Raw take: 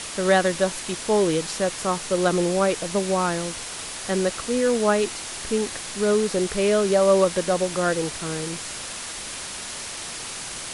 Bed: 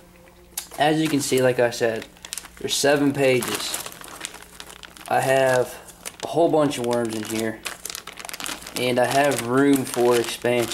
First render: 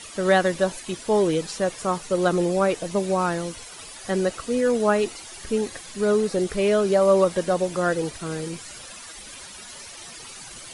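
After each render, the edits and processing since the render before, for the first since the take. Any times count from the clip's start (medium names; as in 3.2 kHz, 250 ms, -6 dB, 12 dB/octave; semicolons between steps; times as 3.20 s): noise reduction 12 dB, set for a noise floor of -34 dBFS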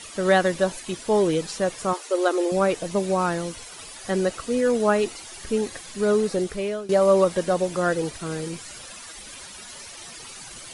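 1.93–2.52 s: brick-wall FIR high-pass 270 Hz; 6.32–6.89 s: fade out, to -18 dB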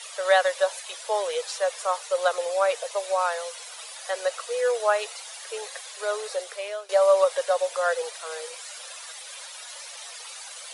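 steep high-pass 480 Hz 72 dB/octave; peaking EQ 3.7 kHz +3 dB 0.28 oct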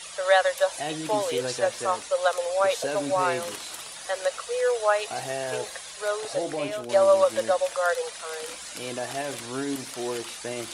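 add bed -13 dB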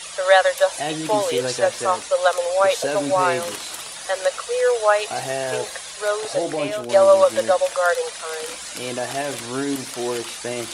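trim +5.5 dB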